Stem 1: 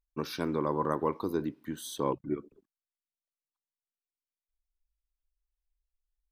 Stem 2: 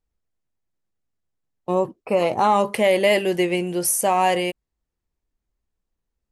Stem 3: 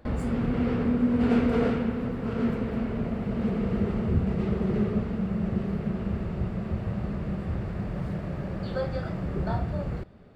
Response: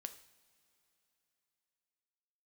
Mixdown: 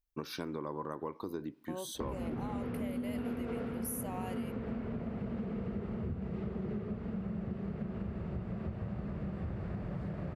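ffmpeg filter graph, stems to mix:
-filter_complex "[0:a]volume=-1.5dB[a];[1:a]aexciter=amount=8:drive=3.9:freq=11k,volume=-18.5dB[b];[2:a]highpass=47,highshelf=f=4.1k:g=-8.5,adelay=1950,volume=-2dB[c];[a][b][c]amix=inputs=3:normalize=0,acompressor=threshold=-35dB:ratio=6"

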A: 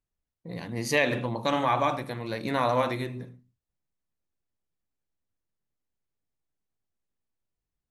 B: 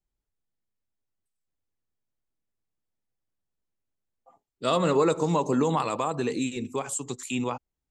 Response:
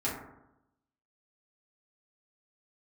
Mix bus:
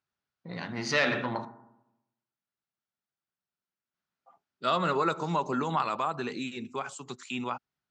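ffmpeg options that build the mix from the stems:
-filter_complex "[0:a]asoftclip=type=tanh:threshold=-21dB,volume=2dB,asplit=3[a][b][c];[a]atrim=end=1.45,asetpts=PTS-STARTPTS,afade=t=out:st=1.446:d=0.004:c=hsin[d];[b]atrim=start=1.45:end=3.94,asetpts=PTS-STARTPTS,volume=0[e];[c]atrim=start=3.94,asetpts=PTS-STARTPTS,afade=t=in:d=0.004:c=hsin[f];[d][e][f]concat=n=3:v=0:a=1,asplit=2[g][h];[h]volume=-15dB[i];[1:a]volume=-2dB[j];[2:a]atrim=start_sample=2205[k];[i][k]afir=irnorm=-1:irlink=0[l];[g][j][l]amix=inputs=3:normalize=0,highpass=170,equalizer=f=290:t=q:w=4:g=-8,equalizer=f=480:t=q:w=4:g=-9,equalizer=f=1.4k:t=q:w=4:g=8,lowpass=f=5.6k:w=0.5412,lowpass=f=5.6k:w=1.3066"

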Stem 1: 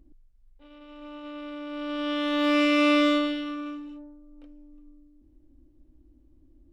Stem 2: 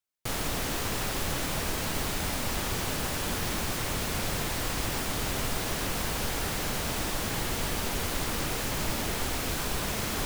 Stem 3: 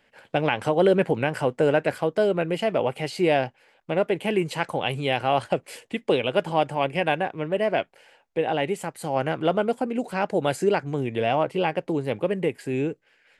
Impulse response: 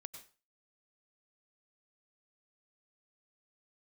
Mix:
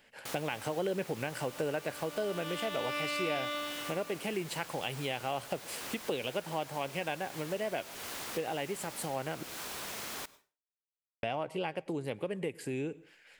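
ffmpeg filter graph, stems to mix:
-filter_complex "[0:a]highpass=690,adelay=400,volume=2dB[a];[1:a]highpass=f=560:p=1,volume=-8dB,asplit=2[b][c];[c]volume=-6dB[d];[2:a]highshelf=f=4.1k:g=9,volume=-3dB,asplit=3[e][f][g];[e]atrim=end=9.43,asetpts=PTS-STARTPTS,afade=t=out:st=9.426:d=0.004:c=hsin[h];[f]atrim=start=9.43:end=11.23,asetpts=PTS-STARTPTS,volume=0[i];[g]atrim=start=11.23,asetpts=PTS-STARTPTS,afade=t=in:d=0.004:c=hsin[j];[h][i][j]concat=n=3:v=0:a=1,asplit=2[k][l];[l]volume=-9dB[m];[3:a]atrim=start_sample=2205[n];[d][m]amix=inputs=2:normalize=0[o];[o][n]afir=irnorm=-1:irlink=0[p];[a][b][k][p]amix=inputs=4:normalize=0,acompressor=threshold=-37dB:ratio=2.5"

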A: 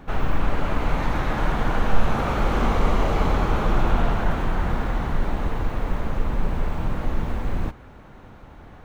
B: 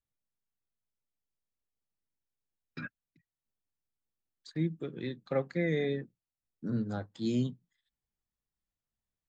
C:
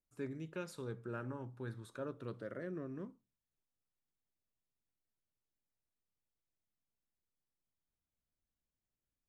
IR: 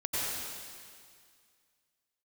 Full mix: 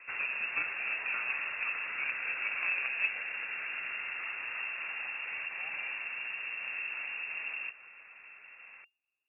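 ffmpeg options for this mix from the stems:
-filter_complex "[0:a]highpass=66,acompressor=threshold=-29dB:ratio=6,volume=-6.5dB[a];[1:a]asoftclip=type=hard:threshold=-34.5dB,volume=-9dB[b];[2:a]equalizer=f=200:t=o:w=0.44:g=15,volume=3dB[c];[a][b][c]amix=inputs=3:normalize=0,aeval=exprs='0.0668*(cos(1*acos(clip(val(0)/0.0668,-1,1)))-cos(1*PI/2))+0.0266*(cos(2*acos(clip(val(0)/0.0668,-1,1)))-cos(2*PI/2))+0.0106*(cos(4*acos(clip(val(0)/0.0668,-1,1)))-cos(4*PI/2))':c=same,lowpass=f=2.4k:t=q:w=0.5098,lowpass=f=2.4k:t=q:w=0.6013,lowpass=f=2.4k:t=q:w=0.9,lowpass=f=2.4k:t=q:w=2.563,afreqshift=-2800"

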